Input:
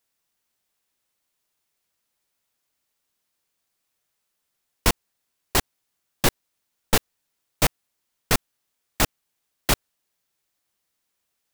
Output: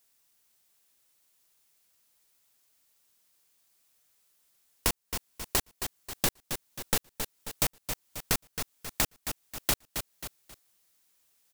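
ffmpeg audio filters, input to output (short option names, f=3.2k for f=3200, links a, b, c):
-filter_complex "[0:a]highshelf=f=4.3k:g=7.5,asplit=2[a][b];[b]aecho=0:1:268|536|804:0.2|0.0539|0.0145[c];[a][c]amix=inputs=2:normalize=0,acompressor=threshold=-33dB:ratio=2.5,volume=2dB"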